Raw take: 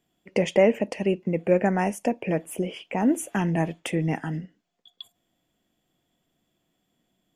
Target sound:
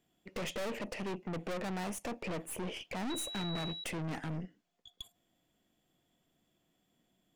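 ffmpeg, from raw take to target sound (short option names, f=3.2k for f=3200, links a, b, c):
-filter_complex "[0:a]aeval=exprs='(tanh(63.1*val(0)+0.55)-tanh(0.55))/63.1':c=same,asettb=1/sr,asplit=3[a][b][c];[a]atrim=end=3.104[d];[b]atrim=start=3.1:end=3.84,asetpts=PTS-STARTPTS,afade=t=in:d=0.004:c=qsin,afade=t=out:st=0.736:d=0.004:c=qsin,aeval=exprs='val(0)+0.00891*sin(2*PI*3900*n/s)':c=same[e];[c]atrim=start=3.836[f];[d][e]acrossfade=d=0.004:c1=hsin:c2=qsin[g];[g][f]acrossfade=d=0.004:c1=qsin:c2=hsin"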